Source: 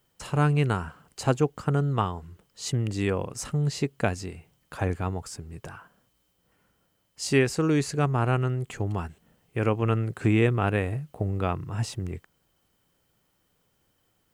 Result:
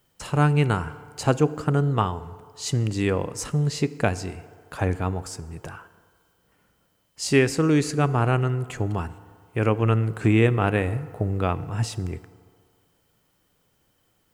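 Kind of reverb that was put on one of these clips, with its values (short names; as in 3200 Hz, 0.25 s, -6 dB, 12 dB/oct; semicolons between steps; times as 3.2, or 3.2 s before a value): FDN reverb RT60 2.1 s, low-frequency decay 0.7×, high-frequency decay 0.5×, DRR 15 dB; gain +3 dB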